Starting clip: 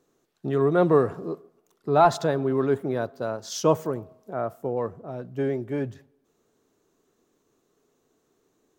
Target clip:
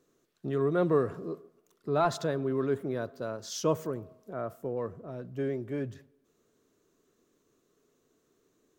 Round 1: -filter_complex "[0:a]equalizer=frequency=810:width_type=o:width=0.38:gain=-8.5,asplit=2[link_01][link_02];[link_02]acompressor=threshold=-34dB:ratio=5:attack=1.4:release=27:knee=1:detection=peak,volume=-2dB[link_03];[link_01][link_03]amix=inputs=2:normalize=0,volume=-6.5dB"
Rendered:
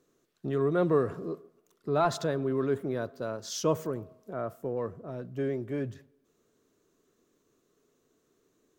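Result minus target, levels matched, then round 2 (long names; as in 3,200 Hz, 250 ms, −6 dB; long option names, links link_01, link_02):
downward compressor: peak gain reduction −6 dB
-filter_complex "[0:a]equalizer=frequency=810:width_type=o:width=0.38:gain=-8.5,asplit=2[link_01][link_02];[link_02]acompressor=threshold=-41.5dB:ratio=5:attack=1.4:release=27:knee=1:detection=peak,volume=-2dB[link_03];[link_01][link_03]amix=inputs=2:normalize=0,volume=-6.5dB"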